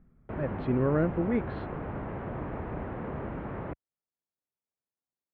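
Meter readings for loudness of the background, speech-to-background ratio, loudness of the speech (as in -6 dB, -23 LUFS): -37.5 LUFS, 8.0 dB, -29.5 LUFS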